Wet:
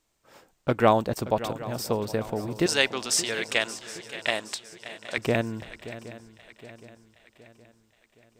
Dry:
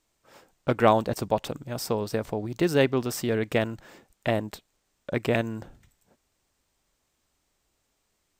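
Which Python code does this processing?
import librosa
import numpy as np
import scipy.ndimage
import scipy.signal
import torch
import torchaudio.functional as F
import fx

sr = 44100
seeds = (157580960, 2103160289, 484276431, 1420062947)

y = fx.weighting(x, sr, curve='ITU-R 468', at=(2.66, 5.18))
y = fx.echo_swing(y, sr, ms=768, ratio=3, feedback_pct=45, wet_db=-15.0)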